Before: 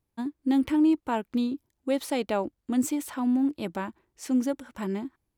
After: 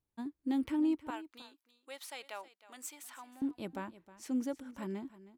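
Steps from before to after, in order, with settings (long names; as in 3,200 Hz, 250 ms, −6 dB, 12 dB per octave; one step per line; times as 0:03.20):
0:01.10–0:03.42: high-pass filter 1,100 Hz 12 dB per octave
single-tap delay 315 ms −17 dB
level −9 dB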